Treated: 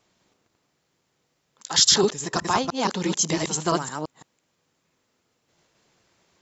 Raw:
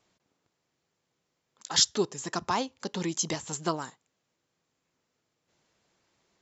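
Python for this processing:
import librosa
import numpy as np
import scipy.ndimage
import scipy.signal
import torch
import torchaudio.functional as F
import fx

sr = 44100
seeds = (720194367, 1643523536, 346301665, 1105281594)

y = fx.reverse_delay(x, sr, ms=169, wet_db=0)
y = y * 10.0 ** (4.5 / 20.0)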